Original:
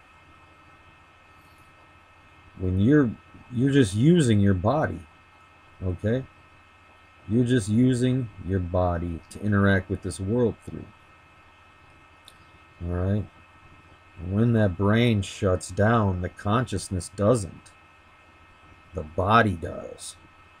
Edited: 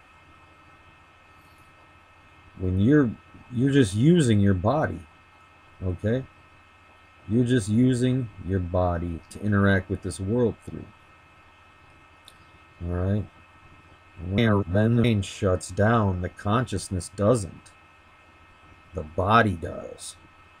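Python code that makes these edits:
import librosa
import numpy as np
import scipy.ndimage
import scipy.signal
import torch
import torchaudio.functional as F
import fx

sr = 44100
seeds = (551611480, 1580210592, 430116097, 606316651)

y = fx.edit(x, sr, fx.reverse_span(start_s=14.38, length_s=0.66), tone=tone)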